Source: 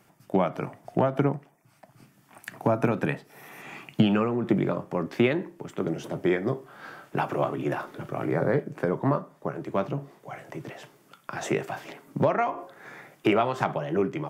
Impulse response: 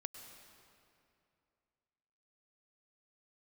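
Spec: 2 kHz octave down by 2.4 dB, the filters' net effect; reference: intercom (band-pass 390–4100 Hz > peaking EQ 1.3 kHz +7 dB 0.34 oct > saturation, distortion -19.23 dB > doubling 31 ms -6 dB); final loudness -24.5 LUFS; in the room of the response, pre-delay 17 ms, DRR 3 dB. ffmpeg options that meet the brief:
-filter_complex "[0:a]equalizer=f=2000:t=o:g=-5,asplit=2[s0][s1];[1:a]atrim=start_sample=2205,adelay=17[s2];[s1][s2]afir=irnorm=-1:irlink=0,volume=1[s3];[s0][s3]amix=inputs=2:normalize=0,highpass=390,lowpass=4100,equalizer=f=1300:t=o:w=0.34:g=7,asoftclip=threshold=0.178,asplit=2[s4][s5];[s5]adelay=31,volume=0.501[s6];[s4][s6]amix=inputs=2:normalize=0,volume=1.68"

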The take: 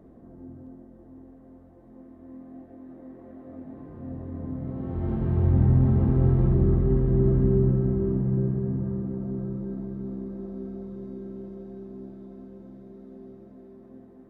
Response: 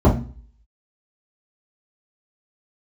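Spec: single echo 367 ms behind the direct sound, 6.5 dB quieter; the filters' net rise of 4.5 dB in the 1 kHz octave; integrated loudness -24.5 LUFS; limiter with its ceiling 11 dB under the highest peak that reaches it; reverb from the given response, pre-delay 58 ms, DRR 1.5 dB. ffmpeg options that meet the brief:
-filter_complex "[0:a]equalizer=f=1000:t=o:g=6,alimiter=limit=0.0944:level=0:latency=1,aecho=1:1:367:0.473,asplit=2[s0][s1];[1:a]atrim=start_sample=2205,adelay=58[s2];[s1][s2]afir=irnorm=-1:irlink=0,volume=0.0668[s3];[s0][s3]amix=inputs=2:normalize=0,volume=0.299"

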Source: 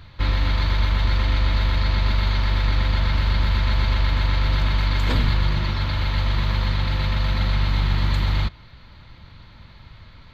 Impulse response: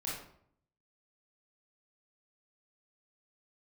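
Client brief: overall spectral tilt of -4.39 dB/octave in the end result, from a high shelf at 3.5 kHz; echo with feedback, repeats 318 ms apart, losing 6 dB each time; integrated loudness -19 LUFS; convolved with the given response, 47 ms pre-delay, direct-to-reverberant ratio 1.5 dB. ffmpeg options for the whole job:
-filter_complex "[0:a]highshelf=f=3500:g=-3.5,aecho=1:1:318|636|954|1272|1590|1908:0.501|0.251|0.125|0.0626|0.0313|0.0157,asplit=2[s0][s1];[1:a]atrim=start_sample=2205,adelay=47[s2];[s1][s2]afir=irnorm=-1:irlink=0,volume=0.668[s3];[s0][s3]amix=inputs=2:normalize=0,volume=1.41"

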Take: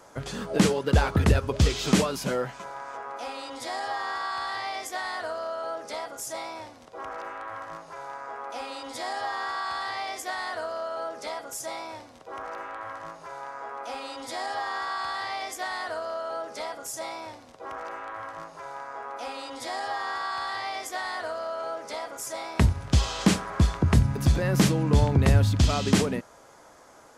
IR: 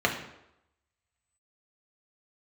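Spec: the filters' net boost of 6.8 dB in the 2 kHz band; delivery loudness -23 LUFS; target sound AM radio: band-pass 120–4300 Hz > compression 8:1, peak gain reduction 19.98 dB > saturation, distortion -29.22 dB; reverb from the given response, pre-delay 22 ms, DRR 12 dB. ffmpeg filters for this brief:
-filter_complex "[0:a]equalizer=f=2000:t=o:g=8.5,asplit=2[s0][s1];[1:a]atrim=start_sample=2205,adelay=22[s2];[s1][s2]afir=irnorm=-1:irlink=0,volume=0.0531[s3];[s0][s3]amix=inputs=2:normalize=0,highpass=120,lowpass=4300,acompressor=threshold=0.0178:ratio=8,asoftclip=threshold=0.0708,volume=5.96"

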